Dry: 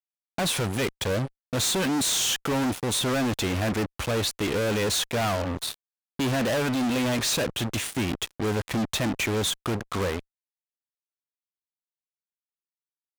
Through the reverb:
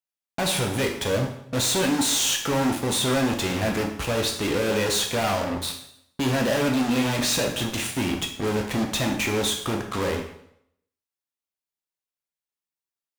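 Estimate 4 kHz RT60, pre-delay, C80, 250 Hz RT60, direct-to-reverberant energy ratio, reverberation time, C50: 0.65 s, 5 ms, 10.0 dB, 0.70 s, 1.5 dB, 0.70 s, 6.5 dB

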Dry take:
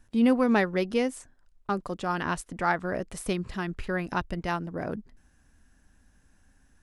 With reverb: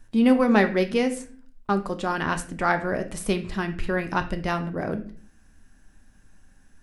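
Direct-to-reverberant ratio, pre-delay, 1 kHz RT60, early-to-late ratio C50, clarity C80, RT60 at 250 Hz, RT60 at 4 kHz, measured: 7.0 dB, 3 ms, 0.40 s, 13.0 dB, 17.0 dB, 0.70 s, 0.35 s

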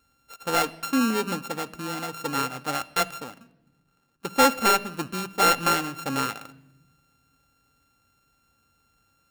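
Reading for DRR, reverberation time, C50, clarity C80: 11.5 dB, 1.0 s, 20.0 dB, 22.0 dB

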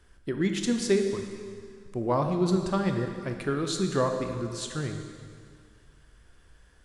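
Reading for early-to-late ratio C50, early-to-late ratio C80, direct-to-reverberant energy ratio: 5.5 dB, 7.0 dB, 4.5 dB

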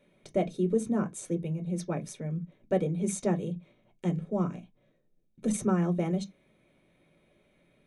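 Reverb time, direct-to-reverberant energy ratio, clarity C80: non-exponential decay, 5.5 dB, 31.0 dB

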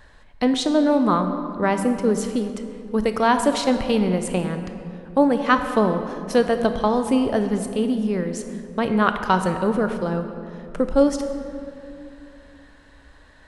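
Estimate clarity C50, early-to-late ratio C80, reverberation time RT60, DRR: 8.0 dB, 9.0 dB, 2.6 s, 7.5 dB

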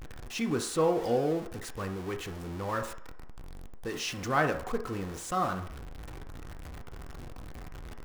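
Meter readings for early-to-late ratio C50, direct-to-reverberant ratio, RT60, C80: 11.0 dB, 5.5 dB, 0.60 s, 14.0 dB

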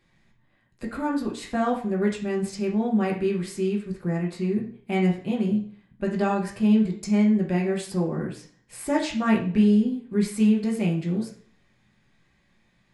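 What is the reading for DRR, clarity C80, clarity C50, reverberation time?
−2.5 dB, 12.5 dB, 8.0 dB, 0.50 s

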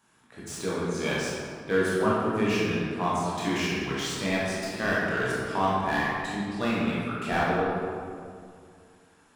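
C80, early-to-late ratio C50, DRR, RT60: 0.0 dB, −3.0 dB, −8.0 dB, 2.2 s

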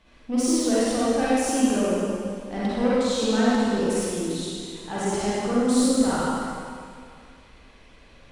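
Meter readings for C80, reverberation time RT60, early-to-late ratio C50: −3.0 dB, 2.2 s, −7.0 dB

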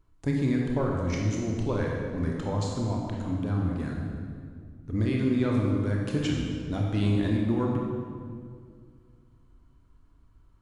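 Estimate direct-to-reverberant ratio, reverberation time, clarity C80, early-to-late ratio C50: −1.5 dB, 2.0 s, 2.0 dB, 0.5 dB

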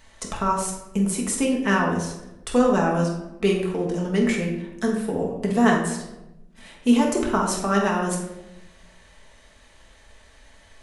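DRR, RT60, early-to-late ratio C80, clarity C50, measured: −2.0 dB, 0.95 s, 7.0 dB, 3.5 dB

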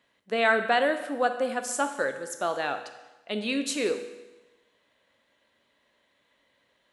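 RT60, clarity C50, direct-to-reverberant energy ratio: 1.1 s, 9.5 dB, 7.5 dB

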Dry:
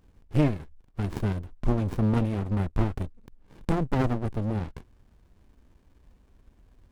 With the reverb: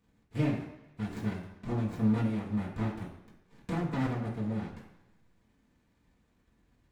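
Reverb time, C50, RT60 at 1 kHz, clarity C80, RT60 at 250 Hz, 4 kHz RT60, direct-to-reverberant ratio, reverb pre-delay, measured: 0.95 s, 5.5 dB, 1.0 s, 8.5 dB, 0.90 s, 1.0 s, −9.5 dB, 3 ms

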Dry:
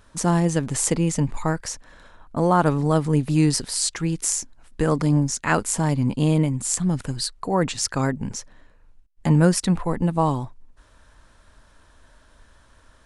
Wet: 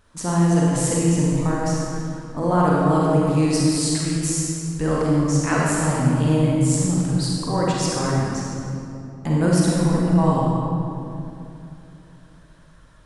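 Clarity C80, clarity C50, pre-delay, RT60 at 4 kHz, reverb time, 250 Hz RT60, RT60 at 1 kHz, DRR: −1.0 dB, −3.5 dB, 35 ms, 1.8 s, 2.9 s, 3.5 s, 2.6 s, −5.0 dB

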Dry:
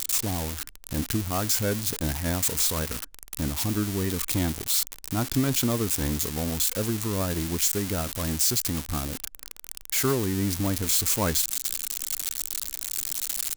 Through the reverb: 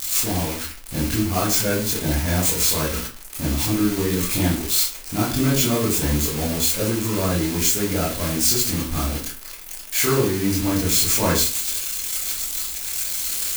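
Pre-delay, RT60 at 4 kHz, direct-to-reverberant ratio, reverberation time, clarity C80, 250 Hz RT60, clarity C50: 18 ms, 0.30 s, −8.0 dB, 0.40 s, 11.0 dB, 0.40 s, 5.0 dB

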